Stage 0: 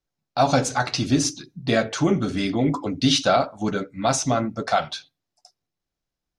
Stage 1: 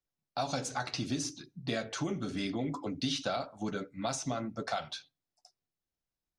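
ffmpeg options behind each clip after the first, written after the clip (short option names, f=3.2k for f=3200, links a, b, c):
-filter_complex "[0:a]acrossover=split=96|2900[a][b][c];[a]acompressor=threshold=-48dB:ratio=4[d];[b]acompressor=threshold=-23dB:ratio=4[e];[c]acompressor=threshold=-28dB:ratio=4[f];[d][e][f]amix=inputs=3:normalize=0,volume=-8.5dB"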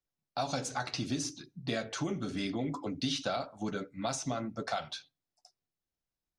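-af anull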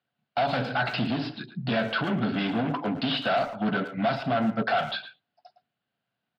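-filter_complex "[0:a]aresample=11025,asoftclip=type=hard:threshold=-36dB,aresample=44100,highpass=f=110:w=0.5412,highpass=f=110:w=1.3066,equalizer=f=120:t=q:w=4:g=6,equalizer=f=220:t=q:w=4:g=8,equalizer=f=340:t=q:w=4:g=-4,equalizer=f=690:t=q:w=4:g=8,equalizer=f=1.5k:t=q:w=4:g=9,equalizer=f=2.9k:t=q:w=4:g=6,lowpass=f=4.2k:w=0.5412,lowpass=f=4.2k:w=1.3066,asplit=2[a][b];[b]adelay=110,highpass=300,lowpass=3.4k,asoftclip=type=hard:threshold=-33.5dB,volume=-10dB[c];[a][c]amix=inputs=2:normalize=0,volume=9dB"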